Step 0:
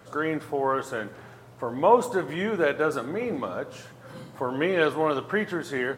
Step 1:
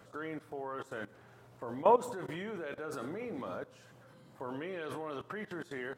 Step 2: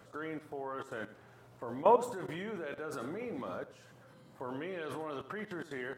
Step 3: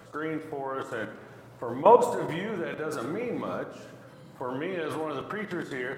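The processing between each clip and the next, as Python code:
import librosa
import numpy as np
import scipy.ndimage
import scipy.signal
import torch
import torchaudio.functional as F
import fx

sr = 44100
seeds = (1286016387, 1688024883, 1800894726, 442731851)

y1 = fx.level_steps(x, sr, step_db=18)
y1 = y1 * 10.0 ** (-4.0 / 20.0)
y2 = y1 + 10.0 ** (-15.0 / 20.0) * np.pad(y1, (int(86 * sr / 1000.0), 0))[:len(y1)]
y3 = fx.room_shoebox(y2, sr, seeds[0], volume_m3=1400.0, walls='mixed', distance_m=0.67)
y3 = y3 * 10.0 ** (7.0 / 20.0)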